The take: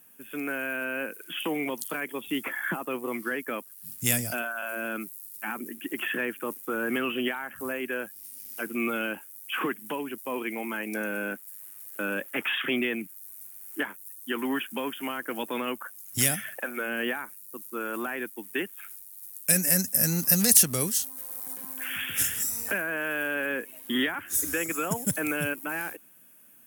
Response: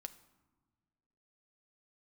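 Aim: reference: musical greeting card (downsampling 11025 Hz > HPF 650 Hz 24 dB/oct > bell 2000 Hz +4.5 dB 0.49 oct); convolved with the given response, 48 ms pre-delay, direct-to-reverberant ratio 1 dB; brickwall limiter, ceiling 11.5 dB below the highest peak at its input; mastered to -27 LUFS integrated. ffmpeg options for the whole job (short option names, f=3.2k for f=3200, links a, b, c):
-filter_complex "[0:a]alimiter=limit=-15dB:level=0:latency=1,asplit=2[a][b];[1:a]atrim=start_sample=2205,adelay=48[c];[b][c]afir=irnorm=-1:irlink=0,volume=4dB[d];[a][d]amix=inputs=2:normalize=0,aresample=11025,aresample=44100,highpass=f=650:w=0.5412,highpass=f=650:w=1.3066,equalizer=f=2k:t=o:w=0.49:g=4.5,volume=3dB"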